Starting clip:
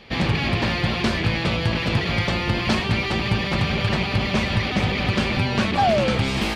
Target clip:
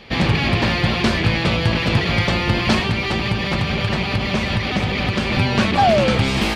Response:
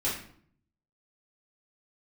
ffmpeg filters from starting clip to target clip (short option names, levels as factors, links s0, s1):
-filter_complex "[0:a]asettb=1/sr,asplit=3[s0][s1][s2];[s0]atrim=end=2.884[s3];[s1]atrim=start=2.88:end=5.32,asetpts=PTS-STARTPTS,afade=t=in:d=0.004:c=qsin,afade=t=out:st=2.436:d=0.004:c=qsin,acompressor=threshold=0.1:ratio=6[s4];[s2]atrim=start=5.316[s5];[s3][s4]acrossfade=d=0.004:c1=hsin:c2=qsin[s6];[s6][s5]acrossfade=d=0.004:c1=qsin:c2=hsin,volume=1.58"